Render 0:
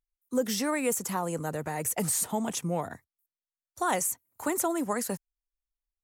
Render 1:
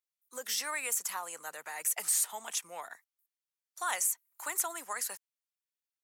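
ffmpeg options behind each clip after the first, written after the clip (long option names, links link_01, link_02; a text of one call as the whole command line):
ffmpeg -i in.wav -af "highpass=1300" out.wav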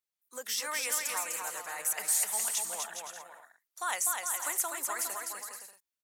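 ffmpeg -i in.wav -af "aecho=1:1:250|412.5|518.1|586.8|631.4:0.631|0.398|0.251|0.158|0.1" out.wav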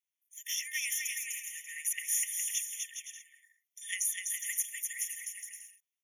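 ffmpeg -i in.wav -af "afftfilt=real='re*eq(mod(floor(b*sr/1024/1800),2),1)':imag='im*eq(mod(floor(b*sr/1024/1800),2),1)':win_size=1024:overlap=0.75,volume=1dB" out.wav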